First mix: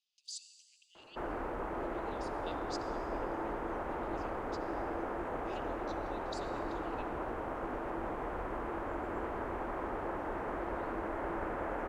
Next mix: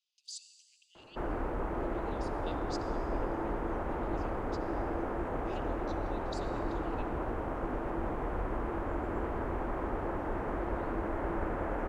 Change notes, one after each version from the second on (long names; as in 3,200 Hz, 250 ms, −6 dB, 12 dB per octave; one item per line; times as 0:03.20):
background: add low-shelf EQ 260 Hz +9.5 dB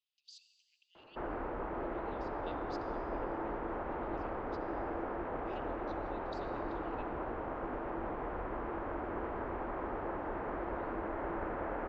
background: add low-shelf EQ 260 Hz −9.5 dB
master: add high-frequency loss of the air 230 metres